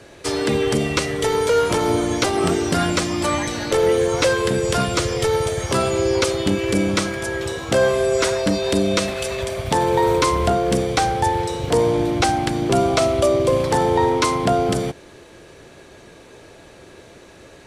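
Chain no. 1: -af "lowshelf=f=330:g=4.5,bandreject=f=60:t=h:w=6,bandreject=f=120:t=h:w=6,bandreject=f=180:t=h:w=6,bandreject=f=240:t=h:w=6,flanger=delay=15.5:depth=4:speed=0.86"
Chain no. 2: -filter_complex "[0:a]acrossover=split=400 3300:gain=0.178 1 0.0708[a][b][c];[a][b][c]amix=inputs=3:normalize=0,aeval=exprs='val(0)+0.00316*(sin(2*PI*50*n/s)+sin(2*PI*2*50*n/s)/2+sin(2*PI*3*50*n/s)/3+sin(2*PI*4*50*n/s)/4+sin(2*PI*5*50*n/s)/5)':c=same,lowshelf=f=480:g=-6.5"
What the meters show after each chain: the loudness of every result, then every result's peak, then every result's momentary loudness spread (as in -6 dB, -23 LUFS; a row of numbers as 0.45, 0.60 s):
-21.0, -25.0 LUFS; -6.0, -8.5 dBFS; 6, 6 LU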